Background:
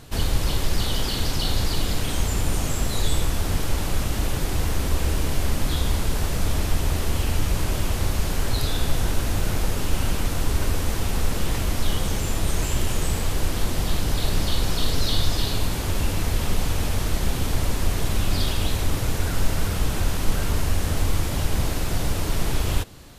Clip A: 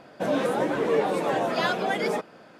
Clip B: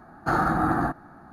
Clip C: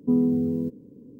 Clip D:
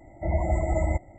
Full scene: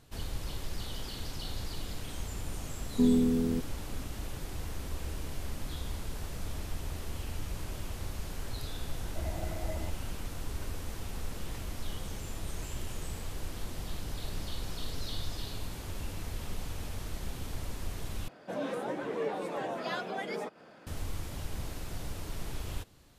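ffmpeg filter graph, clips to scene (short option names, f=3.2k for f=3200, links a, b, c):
-filter_complex "[0:a]volume=-15dB[a];[1:a]acompressor=mode=upward:threshold=-35dB:ratio=2.5:attack=3.2:release=140:knee=2.83:detection=peak[b];[a]asplit=2[c][d];[c]atrim=end=18.284[e];[b]atrim=end=2.59,asetpts=PTS-STARTPTS,volume=-10.5dB[f];[d]atrim=start=20.866[g];[3:a]atrim=end=1.19,asetpts=PTS-STARTPTS,volume=-3.5dB,afade=t=in:d=0.004:c=hsin,afade=t=out:st=1.186:d=0.004:c=hsin,adelay=2910[h];[4:a]atrim=end=1.18,asetpts=PTS-STARTPTS,volume=-13.5dB,afade=t=in:d=0.004:c=hsin,afade=t=out:st=1.176:d=0.004:c=hsin,adelay=8930[i];[e][f]acrossfade=d=0.004:c1=hsin:c2=hsin[j];[j][g]acrossfade=d=0.004:c1=hsin:c2=hsin[k];[k][h][i]amix=inputs=3:normalize=0"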